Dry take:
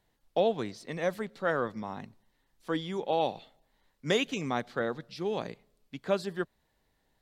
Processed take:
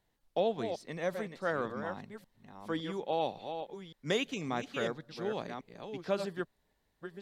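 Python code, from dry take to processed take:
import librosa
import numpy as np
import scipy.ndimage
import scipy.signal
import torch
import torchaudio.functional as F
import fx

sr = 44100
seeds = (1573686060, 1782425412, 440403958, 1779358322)

y = fx.reverse_delay(x, sr, ms=561, wet_db=-7.5)
y = F.gain(torch.from_numpy(y), -4.0).numpy()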